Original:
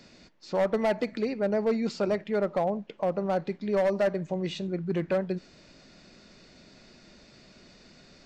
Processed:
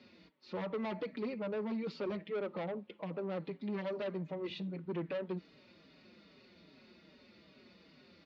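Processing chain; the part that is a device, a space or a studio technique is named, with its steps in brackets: barber-pole flanger into a guitar amplifier (endless flanger 4.9 ms -2.5 Hz; saturation -30.5 dBFS, distortion -9 dB; cabinet simulation 100–4000 Hz, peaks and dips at 130 Hz -8 dB, 710 Hz -7 dB, 1.6 kHz -5 dB); trim -1.5 dB

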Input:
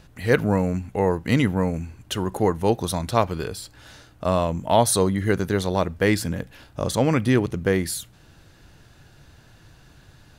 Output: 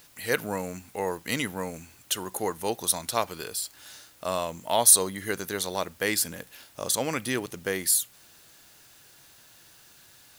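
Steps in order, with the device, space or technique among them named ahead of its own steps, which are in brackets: turntable without a phono preamp (RIAA curve recording; white noise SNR 28 dB); trim -5.5 dB

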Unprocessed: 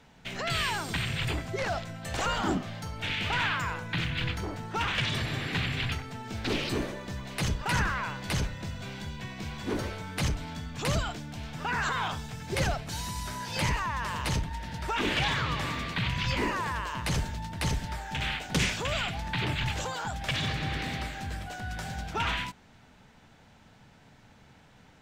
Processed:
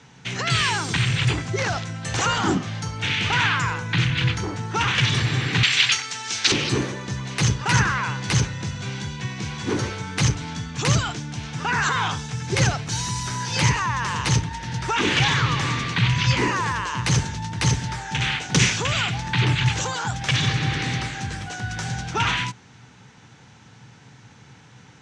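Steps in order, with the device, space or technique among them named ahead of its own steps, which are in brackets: car door speaker (cabinet simulation 100–8800 Hz, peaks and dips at 120 Hz +9 dB, 230 Hz -3 dB, 630 Hz -10 dB, 6.1 kHz +7 dB); 5.63–6.52 s: frequency weighting ITU-R 468; trim +8 dB

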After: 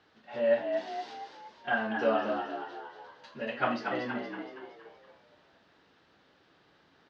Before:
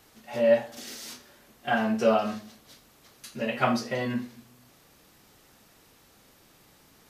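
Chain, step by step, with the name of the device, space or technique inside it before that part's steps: frequency-shifting delay pedal into a guitar cabinet (frequency-shifting echo 234 ms, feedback 49%, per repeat +71 Hz, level -6.5 dB; cabinet simulation 89–4100 Hz, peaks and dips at 120 Hz -7 dB, 220 Hz -4 dB, 1.6 kHz +5 dB, 2.3 kHz -4 dB); trim -5 dB

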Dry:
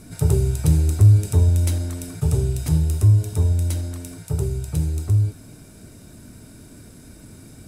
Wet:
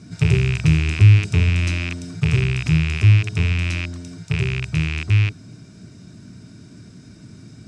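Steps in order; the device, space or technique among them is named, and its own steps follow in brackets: car door speaker with a rattle (rattle on loud lows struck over -24 dBFS, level -14 dBFS; cabinet simulation 83–6700 Hz, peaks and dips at 120 Hz +6 dB, 180 Hz +7 dB, 520 Hz -8 dB, 840 Hz -6 dB, 5.4 kHz +4 dB)

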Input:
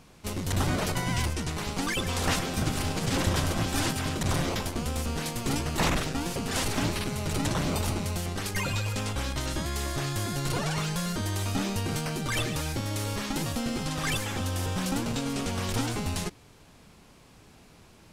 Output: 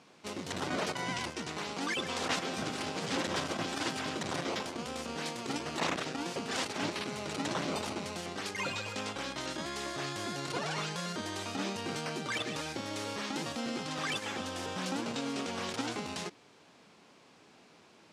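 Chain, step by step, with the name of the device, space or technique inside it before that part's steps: public-address speaker with an overloaded transformer (transformer saturation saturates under 130 Hz; band-pass 250–6300 Hz); trim -2 dB

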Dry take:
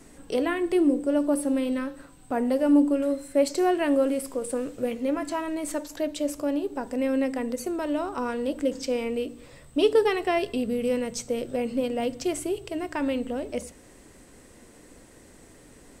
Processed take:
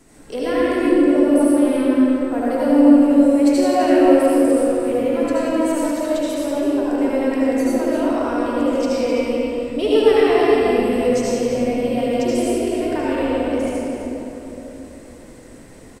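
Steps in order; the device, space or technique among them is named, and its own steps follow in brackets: cave (delay 257 ms -10 dB; reverberation RT60 3.4 s, pre-delay 68 ms, DRR -8.5 dB); trim -1.5 dB

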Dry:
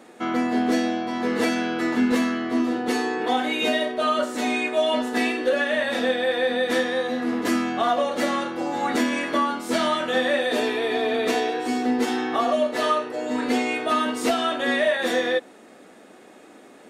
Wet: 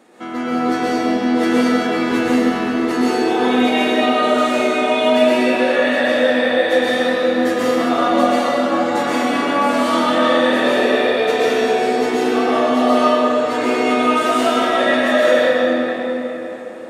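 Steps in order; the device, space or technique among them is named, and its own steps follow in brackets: cathedral (reverberation RT60 4.6 s, pre-delay 110 ms, DRR -9.5 dB); trim -3 dB

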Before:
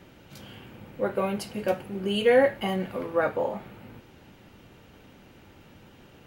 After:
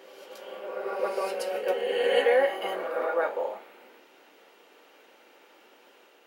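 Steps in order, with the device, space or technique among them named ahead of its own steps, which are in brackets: ghost voice (reverse; reverberation RT60 2.1 s, pre-delay 113 ms, DRR 0.5 dB; reverse; high-pass 390 Hz 24 dB/octave); trim -2.5 dB

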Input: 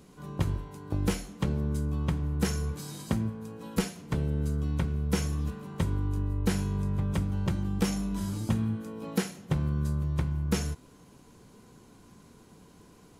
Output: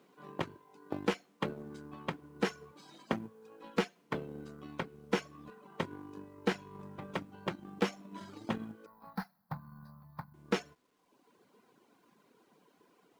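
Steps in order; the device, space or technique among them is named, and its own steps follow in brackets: high-pass 84 Hz 12 dB/octave; reverb removal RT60 1.1 s; phone line with mismatched companding (band-pass 320–3300 Hz; companding laws mixed up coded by A); 8.86–10.34 s: FFT filter 130 Hz 0 dB, 220 Hz -5 dB, 380 Hz -29 dB, 820 Hz -1 dB, 1.7 kHz -8 dB, 3 kHz -28 dB, 4.5 kHz -4 dB, 7.5 kHz -28 dB, 12 kHz +6 dB; trim +4 dB

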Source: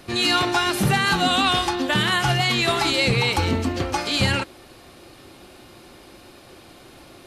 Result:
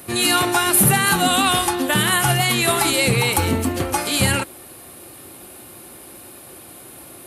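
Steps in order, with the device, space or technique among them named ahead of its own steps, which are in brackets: budget condenser microphone (high-pass 68 Hz; resonant high shelf 7.6 kHz +14 dB, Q 1.5); trim +2.5 dB

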